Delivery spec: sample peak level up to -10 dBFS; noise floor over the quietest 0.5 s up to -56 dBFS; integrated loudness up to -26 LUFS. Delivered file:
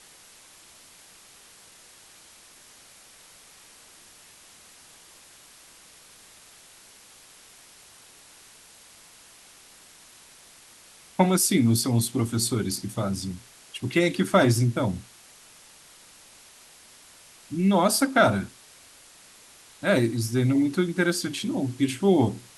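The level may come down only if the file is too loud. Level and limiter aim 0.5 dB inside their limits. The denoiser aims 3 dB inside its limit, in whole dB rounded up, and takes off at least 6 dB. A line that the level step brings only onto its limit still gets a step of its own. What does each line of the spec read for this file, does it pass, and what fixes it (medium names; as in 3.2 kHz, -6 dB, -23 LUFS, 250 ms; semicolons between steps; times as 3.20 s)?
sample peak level -6.0 dBFS: fail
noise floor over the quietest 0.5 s -52 dBFS: fail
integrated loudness -24.0 LUFS: fail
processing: noise reduction 6 dB, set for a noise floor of -52 dBFS; trim -2.5 dB; peak limiter -10.5 dBFS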